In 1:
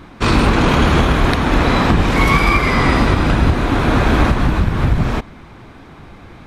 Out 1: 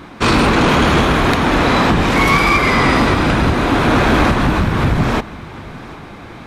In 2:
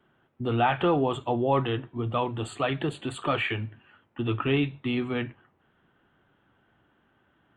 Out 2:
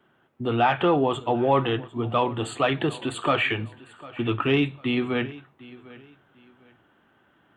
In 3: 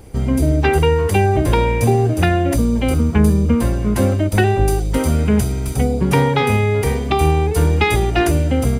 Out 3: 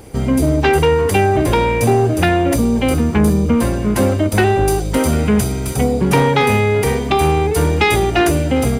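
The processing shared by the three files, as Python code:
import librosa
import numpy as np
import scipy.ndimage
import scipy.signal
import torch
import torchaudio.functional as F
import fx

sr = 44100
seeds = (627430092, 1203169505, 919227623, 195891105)

p1 = fx.low_shelf(x, sr, hz=96.0, db=-10.5)
p2 = fx.rider(p1, sr, range_db=10, speed_s=2.0)
p3 = p1 + (p2 * librosa.db_to_amplitude(-3.0))
p4 = 10.0 ** (-5.5 / 20.0) * np.tanh(p3 / 10.0 ** (-5.5 / 20.0))
y = fx.echo_feedback(p4, sr, ms=750, feedback_pct=28, wet_db=-20.0)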